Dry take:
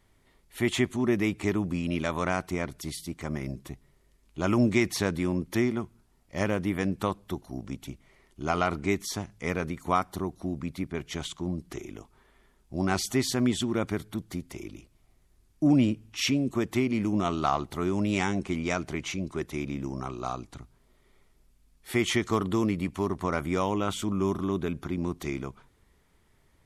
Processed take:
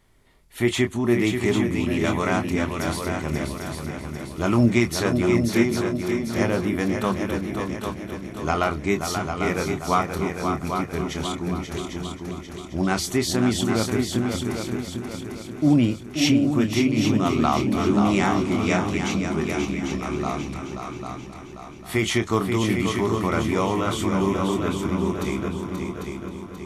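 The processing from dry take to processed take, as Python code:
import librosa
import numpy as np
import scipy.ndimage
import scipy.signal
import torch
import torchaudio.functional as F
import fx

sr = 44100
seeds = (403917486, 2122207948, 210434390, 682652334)

y = fx.echo_heads(x, sr, ms=266, heads='second and third', feedback_pct=51, wet_db=-6.5)
y = fx.chorus_voices(y, sr, voices=4, hz=0.61, base_ms=26, depth_ms=1.5, mix_pct=30)
y = y * librosa.db_to_amplitude(6.5)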